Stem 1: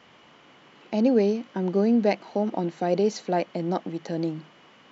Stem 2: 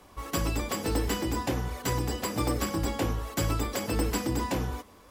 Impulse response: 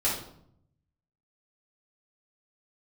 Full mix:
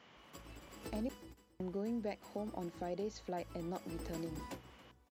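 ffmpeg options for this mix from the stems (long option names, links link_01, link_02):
-filter_complex "[0:a]volume=-7.5dB,asplit=3[link_01][link_02][link_03];[link_01]atrim=end=1.09,asetpts=PTS-STARTPTS,afade=type=out:start_time=1.086:duration=0.004:curve=hsin[link_04];[link_02]atrim=start=1.09:end=1.6,asetpts=PTS-STARTPTS,volume=0[link_05];[link_03]atrim=start=1.6,asetpts=PTS-STARTPTS,afade=type=in:duration=0.004:curve=hsin[link_06];[link_04][link_05][link_06]concat=n=3:v=0:a=1,asplit=2[link_07][link_08];[1:a]volume=-3dB,afade=type=out:start_time=1.01:duration=0.26:silence=0.354813,afade=type=in:start_time=3.48:duration=0.7:silence=0.398107,asplit=2[link_09][link_10];[link_10]volume=-23dB[link_11];[link_08]apad=whole_len=224970[link_12];[link_09][link_12]sidechaingate=range=-33dB:threshold=-58dB:ratio=16:detection=peak[link_13];[link_11]aecho=0:1:278|556|834:1|0.2|0.04[link_14];[link_07][link_13][link_14]amix=inputs=3:normalize=0,acompressor=threshold=-45dB:ratio=2"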